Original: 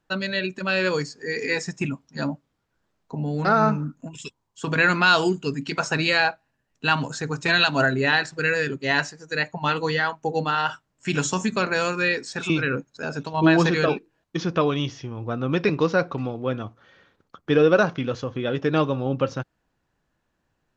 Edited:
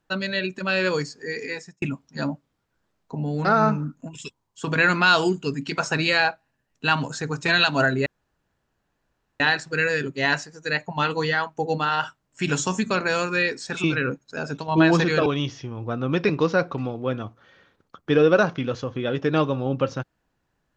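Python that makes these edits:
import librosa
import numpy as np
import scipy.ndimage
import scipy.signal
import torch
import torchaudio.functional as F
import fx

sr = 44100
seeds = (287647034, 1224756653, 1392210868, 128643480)

y = fx.edit(x, sr, fx.fade_out_span(start_s=1.17, length_s=0.65),
    fx.insert_room_tone(at_s=8.06, length_s=1.34),
    fx.cut(start_s=13.92, length_s=0.74), tone=tone)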